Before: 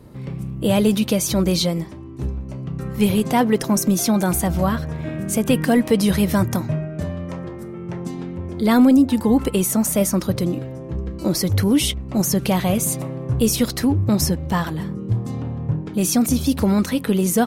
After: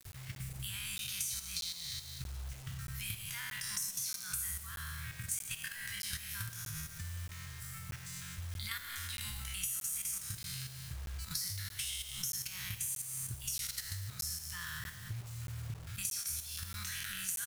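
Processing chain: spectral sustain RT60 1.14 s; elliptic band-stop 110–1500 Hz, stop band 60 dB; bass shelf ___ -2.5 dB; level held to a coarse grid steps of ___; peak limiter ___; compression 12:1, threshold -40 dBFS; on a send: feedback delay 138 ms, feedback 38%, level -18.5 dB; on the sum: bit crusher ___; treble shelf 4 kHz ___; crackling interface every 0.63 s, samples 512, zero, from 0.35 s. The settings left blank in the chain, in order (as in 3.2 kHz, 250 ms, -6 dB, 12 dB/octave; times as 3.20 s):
160 Hz, 12 dB, -14.5 dBFS, 9-bit, +6 dB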